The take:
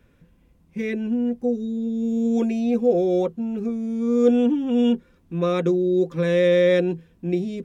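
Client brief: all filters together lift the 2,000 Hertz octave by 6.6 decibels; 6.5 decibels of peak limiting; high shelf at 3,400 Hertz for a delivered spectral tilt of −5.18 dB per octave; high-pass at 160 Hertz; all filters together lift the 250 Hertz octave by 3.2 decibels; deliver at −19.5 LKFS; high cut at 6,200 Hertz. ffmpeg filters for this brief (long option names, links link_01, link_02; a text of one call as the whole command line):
ffmpeg -i in.wav -af "highpass=160,lowpass=6200,equalizer=frequency=250:width_type=o:gain=4.5,equalizer=frequency=2000:width_type=o:gain=8.5,highshelf=frequency=3400:gain=-3.5,volume=1.5dB,alimiter=limit=-10dB:level=0:latency=1" out.wav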